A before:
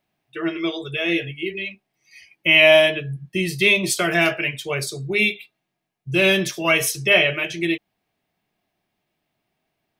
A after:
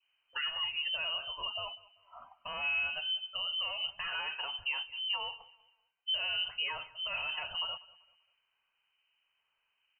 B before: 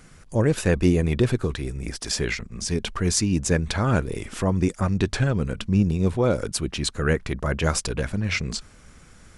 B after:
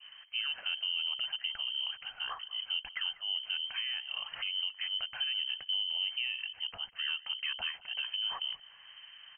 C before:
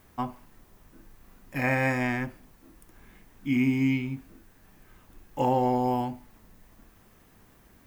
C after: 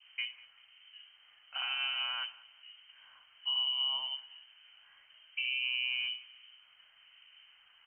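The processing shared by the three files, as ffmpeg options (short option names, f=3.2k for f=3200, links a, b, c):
-filter_complex "[0:a]acrossover=split=330[a][b];[b]asoftclip=type=tanh:threshold=-11dB[c];[a][c]amix=inputs=2:normalize=0,acrossover=split=1300[d][e];[d]aeval=exprs='val(0)*(1-0.5/2+0.5/2*cos(2*PI*1.1*n/s))':c=same[f];[e]aeval=exprs='val(0)*(1-0.5/2-0.5/2*cos(2*PI*1.1*n/s))':c=same[g];[f][g]amix=inputs=2:normalize=0,acompressor=threshold=-28dB:ratio=4,highpass=76,acontrast=32,adynamicequalizer=threshold=0.00631:dfrequency=1400:dqfactor=1.4:tfrequency=1400:tqfactor=1.4:attack=5:release=100:ratio=0.375:range=2:mode=cutabove:tftype=bell,alimiter=limit=-21.5dB:level=0:latency=1:release=236,lowpass=f=2.7k:t=q:w=0.5098,lowpass=f=2.7k:t=q:w=0.6013,lowpass=f=2.7k:t=q:w=0.9,lowpass=f=2.7k:t=q:w=2.563,afreqshift=-3200,equalizer=f=340:t=o:w=1.9:g=-14.5,asplit=2[h][i];[i]aecho=0:1:194|388|582:0.0891|0.0303|0.0103[j];[h][j]amix=inputs=2:normalize=0,volume=-3.5dB"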